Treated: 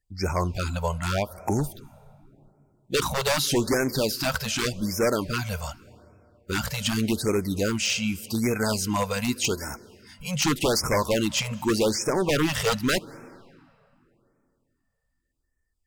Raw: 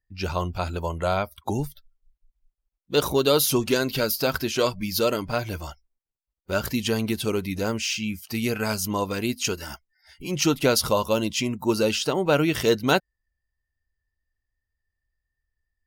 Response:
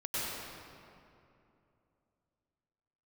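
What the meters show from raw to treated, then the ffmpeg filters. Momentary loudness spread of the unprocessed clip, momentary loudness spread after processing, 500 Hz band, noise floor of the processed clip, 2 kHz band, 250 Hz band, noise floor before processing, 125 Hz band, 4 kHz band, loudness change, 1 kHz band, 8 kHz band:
9 LU, 7 LU, -2.5 dB, -75 dBFS, +0.5 dB, -0.5 dB, -85 dBFS, +1.0 dB, -0.5 dB, -1.0 dB, -1.0 dB, +1.0 dB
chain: -filter_complex "[0:a]acrossover=split=5700[a][b];[b]acompressor=threshold=-37dB:ratio=4:attack=1:release=60[c];[a][c]amix=inputs=2:normalize=0,equalizer=f=7.9k:w=2.4:g=8.5,aeval=exprs='0.126*(abs(mod(val(0)/0.126+3,4)-2)-1)':c=same,asplit=2[d][e];[1:a]atrim=start_sample=2205,adelay=78[f];[e][f]afir=irnorm=-1:irlink=0,volume=-27dB[g];[d][g]amix=inputs=2:normalize=0,afftfilt=real='re*(1-between(b*sr/1024,290*pow(3700/290,0.5+0.5*sin(2*PI*0.85*pts/sr))/1.41,290*pow(3700/290,0.5+0.5*sin(2*PI*0.85*pts/sr))*1.41))':imag='im*(1-between(b*sr/1024,290*pow(3700/290,0.5+0.5*sin(2*PI*0.85*pts/sr))/1.41,290*pow(3700/290,0.5+0.5*sin(2*PI*0.85*pts/sr))*1.41))':win_size=1024:overlap=0.75,volume=2dB"

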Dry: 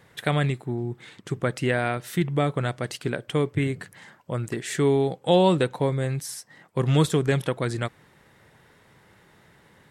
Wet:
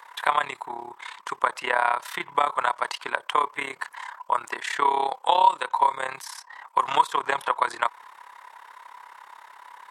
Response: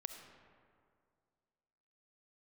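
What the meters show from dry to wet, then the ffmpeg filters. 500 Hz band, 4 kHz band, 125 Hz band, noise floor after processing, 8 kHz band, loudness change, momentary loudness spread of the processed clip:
-8.0 dB, +0.5 dB, under -30 dB, -53 dBFS, -4.0 dB, 0.0 dB, 14 LU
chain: -filter_complex "[0:a]tremolo=f=34:d=0.824,highpass=f=980:t=q:w=8.5,acrossover=split=1300|4700[a][b][c];[a]acompressor=threshold=-27dB:ratio=4[d];[b]acompressor=threshold=-36dB:ratio=4[e];[c]acompressor=threshold=-53dB:ratio=4[f];[d][e][f]amix=inputs=3:normalize=0,volume=8dB"

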